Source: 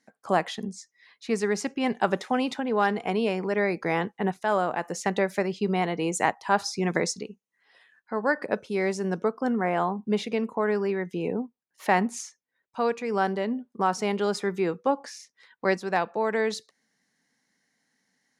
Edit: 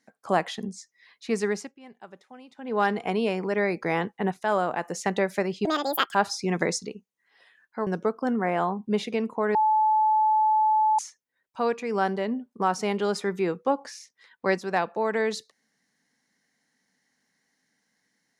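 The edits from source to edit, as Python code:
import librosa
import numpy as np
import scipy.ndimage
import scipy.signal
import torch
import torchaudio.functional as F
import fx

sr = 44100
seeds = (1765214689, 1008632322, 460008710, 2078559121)

y = fx.edit(x, sr, fx.fade_down_up(start_s=1.48, length_s=1.32, db=-21.5, fade_s=0.24),
    fx.speed_span(start_s=5.65, length_s=0.84, speed=1.69),
    fx.cut(start_s=8.21, length_s=0.85),
    fx.bleep(start_s=10.74, length_s=1.44, hz=865.0, db=-18.0), tone=tone)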